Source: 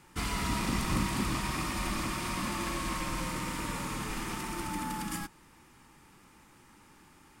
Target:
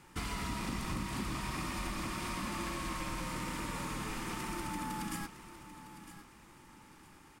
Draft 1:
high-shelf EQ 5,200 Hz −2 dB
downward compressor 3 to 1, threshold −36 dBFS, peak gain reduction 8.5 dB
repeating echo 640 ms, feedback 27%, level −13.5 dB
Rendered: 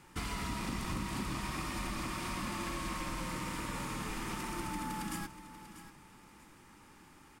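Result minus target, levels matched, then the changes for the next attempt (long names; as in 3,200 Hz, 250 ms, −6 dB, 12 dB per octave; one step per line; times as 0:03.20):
echo 317 ms early
change: repeating echo 957 ms, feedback 27%, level −13.5 dB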